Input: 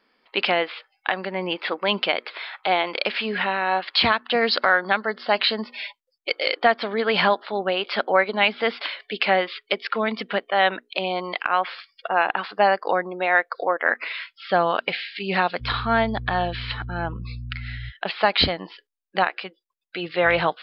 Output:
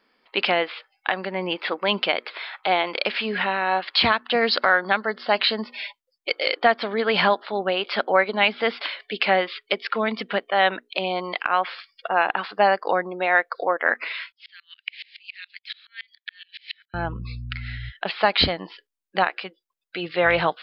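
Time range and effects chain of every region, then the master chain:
14.32–16.94 steep high-pass 1900 Hz 48 dB/oct + dB-ramp tremolo swelling 7.1 Hz, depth 31 dB
whole clip: dry

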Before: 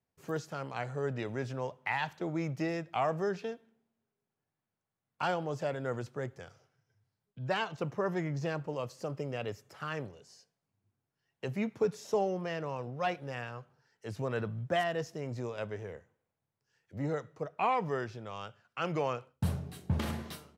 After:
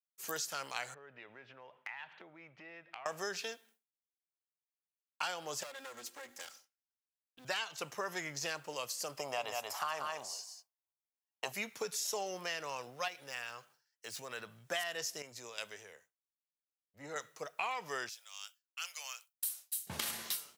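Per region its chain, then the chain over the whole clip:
0.94–3.06 LPF 2700 Hz 24 dB/oct + compressor, threshold -46 dBFS
5.63–7.45 minimum comb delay 3.7 ms + notches 50/100/150/200/250/300/350/400/450 Hz + compressor 8:1, threshold -42 dBFS
9.18–11.52 band shelf 840 Hz +14.5 dB 1.1 oct + echo 0.184 s -5.5 dB
13.08–14.71 median filter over 3 samples + compressor 2:1, threshold -42 dBFS
15.22–17.16 compressor 1.5:1, threshold -52 dBFS + three-band expander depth 100%
18.09–19.87 HPF 550 Hz 24 dB/oct + differentiator
whole clip: expander -58 dBFS; differentiator; compressor 5:1, threshold -51 dBFS; gain +17 dB

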